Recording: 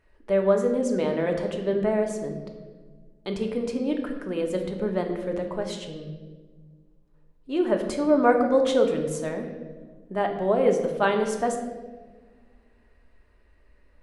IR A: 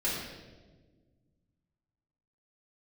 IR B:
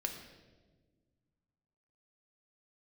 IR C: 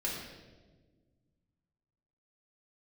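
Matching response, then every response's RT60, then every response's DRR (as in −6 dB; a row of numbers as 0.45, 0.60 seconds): B; 1.4, 1.5, 1.4 seconds; −10.0, 3.0, −6.0 decibels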